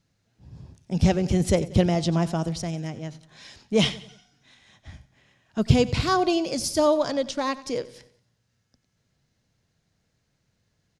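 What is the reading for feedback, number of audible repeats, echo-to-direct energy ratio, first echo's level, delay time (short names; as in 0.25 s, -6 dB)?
46%, 3, -17.0 dB, -18.0 dB, 91 ms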